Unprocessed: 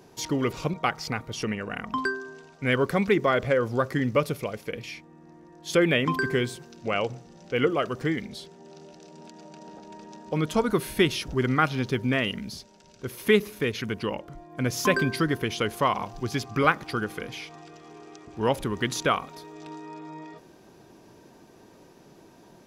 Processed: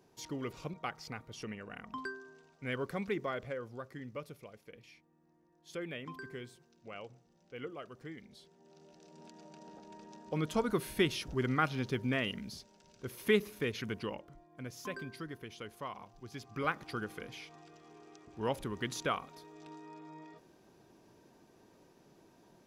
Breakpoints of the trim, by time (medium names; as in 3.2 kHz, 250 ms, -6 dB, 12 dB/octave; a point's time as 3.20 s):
3.20 s -13.5 dB
3.82 s -20 dB
8.11 s -20 dB
9.25 s -8 dB
13.96 s -8 dB
14.76 s -19 dB
16.24 s -19 dB
16.83 s -10 dB